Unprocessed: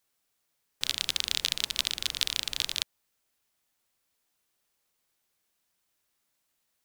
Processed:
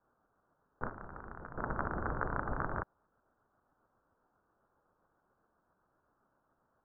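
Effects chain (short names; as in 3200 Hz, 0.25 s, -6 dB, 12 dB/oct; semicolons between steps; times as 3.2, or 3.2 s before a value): steep low-pass 1500 Hz 72 dB/oct; 0.89–1.58 level quantiser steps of 20 dB; tremolo saw up 7.5 Hz, depth 40%; gain +14.5 dB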